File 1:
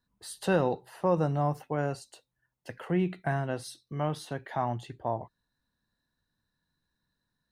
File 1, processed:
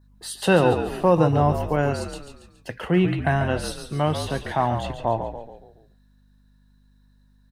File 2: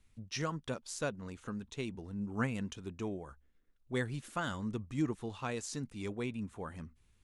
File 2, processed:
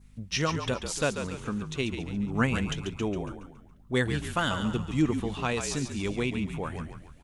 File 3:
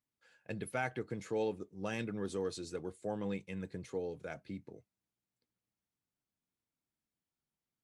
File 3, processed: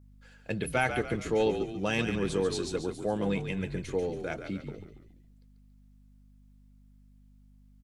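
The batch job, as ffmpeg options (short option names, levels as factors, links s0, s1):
-filter_complex "[0:a]adynamicequalizer=threshold=0.00126:dfrequency=3000:dqfactor=2:tfrequency=3000:tqfactor=2:attack=5:release=100:ratio=0.375:range=3:mode=boostabove:tftype=bell,aeval=exprs='val(0)+0.000794*(sin(2*PI*50*n/s)+sin(2*PI*2*50*n/s)/2+sin(2*PI*3*50*n/s)/3+sin(2*PI*4*50*n/s)/4+sin(2*PI*5*50*n/s)/5)':c=same,asplit=6[s0][s1][s2][s3][s4][s5];[s1]adelay=140,afreqshift=-50,volume=0.398[s6];[s2]adelay=280,afreqshift=-100,volume=0.184[s7];[s3]adelay=420,afreqshift=-150,volume=0.0841[s8];[s4]adelay=560,afreqshift=-200,volume=0.0389[s9];[s5]adelay=700,afreqshift=-250,volume=0.0178[s10];[s0][s6][s7][s8][s9][s10]amix=inputs=6:normalize=0,volume=2.51"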